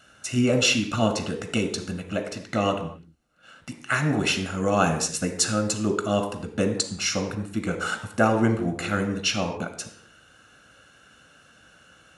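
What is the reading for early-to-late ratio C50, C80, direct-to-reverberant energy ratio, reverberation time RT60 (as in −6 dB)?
9.0 dB, 11.5 dB, 6.5 dB, non-exponential decay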